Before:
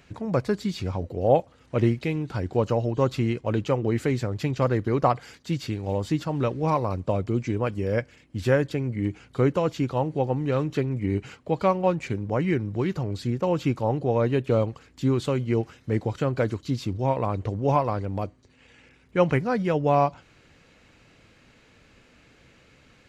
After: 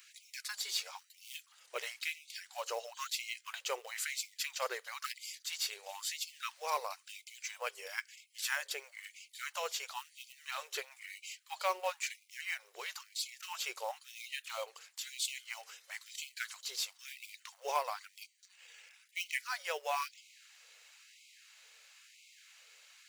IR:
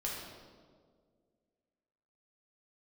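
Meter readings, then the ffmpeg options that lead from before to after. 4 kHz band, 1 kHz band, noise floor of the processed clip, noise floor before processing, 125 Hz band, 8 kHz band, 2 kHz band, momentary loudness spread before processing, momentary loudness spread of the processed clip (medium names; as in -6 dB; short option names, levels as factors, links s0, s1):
+2.5 dB, -12.0 dB, -68 dBFS, -58 dBFS, under -40 dB, no reading, -3.5 dB, 7 LU, 21 LU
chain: -af "aderivative,acrusher=bits=4:mode=log:mix=0:aa=0.000001,afftfilt=real='re*gte(b*sr/1024,370*pow(2100/370,0.5+0.5*sin(2*PI*1*pts/sr)))':imag='im*gte(b*sr/1024,370*pow(2100/370,0.5+0.5*sin(2*PI*1*pts/sr)))':win_size=1024:overlap=0.75,volume=2.51"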